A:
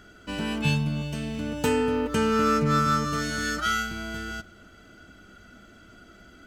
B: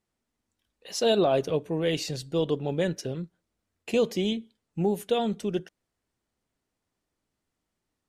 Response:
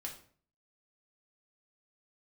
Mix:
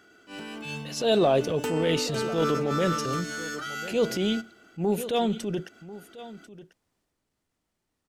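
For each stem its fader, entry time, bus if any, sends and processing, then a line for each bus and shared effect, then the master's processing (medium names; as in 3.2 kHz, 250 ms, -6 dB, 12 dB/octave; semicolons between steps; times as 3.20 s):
-1.5 dB, 0.00 s, no send, no echo send, high-pass 210 Hz 12 dB/octave; comb 2.6 ms, depth 32%; random flutter of the level, depth 65%
+2.0 dB, 0.00 s, no send, echo send -17 dB, none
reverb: none
echo: delay 1043 ms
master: transient shaper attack -8 dB, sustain +3 dB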